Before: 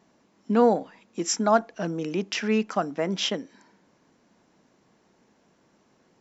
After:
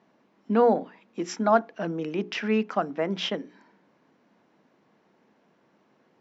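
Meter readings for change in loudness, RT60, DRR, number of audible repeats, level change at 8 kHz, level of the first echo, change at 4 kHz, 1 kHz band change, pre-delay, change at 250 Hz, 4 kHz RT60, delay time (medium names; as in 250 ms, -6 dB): -1.0 dB, no reverb, no reverb, no echo, no reading, no echo, -4.0 dB, 0.0 dB, no reverb, -1.5 dB, no reverb, no echo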